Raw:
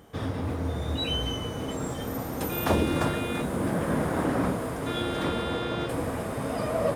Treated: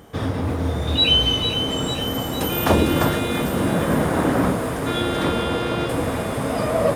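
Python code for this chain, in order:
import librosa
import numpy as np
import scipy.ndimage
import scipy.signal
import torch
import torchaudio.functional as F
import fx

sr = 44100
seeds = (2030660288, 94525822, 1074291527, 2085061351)

y = fx.band_shelf(x, sr, hz=3400.0, db=8.0, octaves=1.1, at=(0.87, 1.53))
y = fx.echo_wet_highpass(y, sr, ms=452, feedback_pct=57, hz=1700.0, wet_db=-8)
y = F.gain(torch.from_numpy(y), 7.0).numpy()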